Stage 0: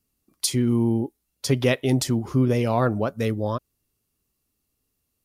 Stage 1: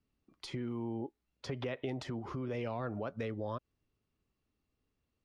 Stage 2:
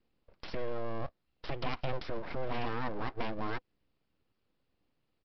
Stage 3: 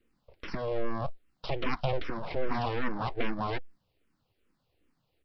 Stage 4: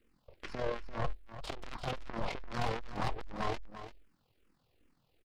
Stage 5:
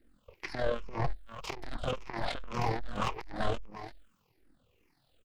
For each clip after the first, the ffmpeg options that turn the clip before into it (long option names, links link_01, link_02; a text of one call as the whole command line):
ffmpeg -i in.wav -filter_complex "[0:a]lowpass=3000,alimiter=limit=-19.5dB:level=0:latency=1:release=123,acrossover=split=440|2100[link_01][link_02][link_03];[link_01]acompressor=threshold=-37dB:ratio=4[link_04];[link_02]acompressor=threshold=-35dB:ratio=4[link_05];[link_03]acompressor=threshold=-46dB:ratio=4[link_06];[link_04][link_05][link_06]amix=inputs=3:normalize=0,volume=-3dB" out.wav
ffmpeg -i in.wav -af "equalizer=frequency=250:width_type=o:width=0.24:gain=3,aecho=1:1:3.9:0.32,aresample=11025,aeval=exprs='abs(val(0))':channel_layout=same,aresample=44100,volume=4.5dB" out.wav
ffmpeg -i in.wav -filter_complex "[0:a]asplit=2[link_01][link_02];[link_02]afreqshift=-2.5[link_03];[link_01][link_03]amix=inputs=2:normalize=1,volume=7.5dB" out.wav
ffmpeg -i in.wav -af "aeval=exprs='(tanh(70.8*val(0)+0.7)-tanh(0.7))/70.8':channel_layout=same,tremolo=f=42:d=0.571,aecho=1:1:342:0.251,volume=8dB" out.wav
ffmpeg -i in.wav -filter_complex "[0:a]afftfilt=real='re*pow(10,10/40*sin(2*PI*(0.78*log(max(b,1)*sr/1024/100)/log(2)-(-1.8)*(pts-256)/sr)))':imag='im*pow(10,10/40*sin(2*PI*(0.78*log(max(b,1)*sr/1024/100)/log(2)-(-1.8)*(pts-256)/sr)))':win_size=1024:overlap=0.75,acrossover=split=800[link_01][link_02];[link_01]aeval=exprs='val(0)*(1-0.5/2+0.5/2*cos(2*PI*1.1*n/s))':channel_layout=same[link_03];[link_02]aeval=exprs='val(0)*(1-0.5/2-0.5/2*cos(2*PI*1.1*n/s))':channel_layout=same[link_04];[link_03][link_04]amix=inputs=2:normalize=0,volume=4.5dB" out.wav